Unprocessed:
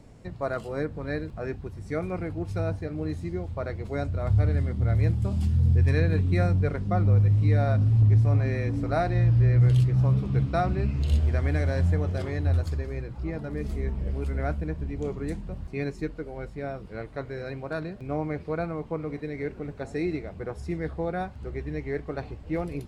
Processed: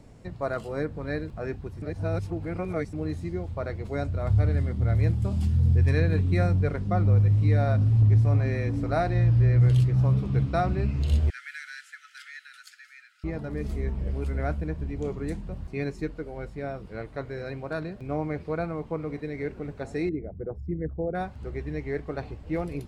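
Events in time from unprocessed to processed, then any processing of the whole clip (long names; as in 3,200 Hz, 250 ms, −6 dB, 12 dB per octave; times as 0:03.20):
0:01.82–0:02.93: reverse
0:11.30–0:13.24: Chebyshev high-pass filter 1,300 Hz, order 10
0:20.09–0:21.15: spectral envelope exaggerated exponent 2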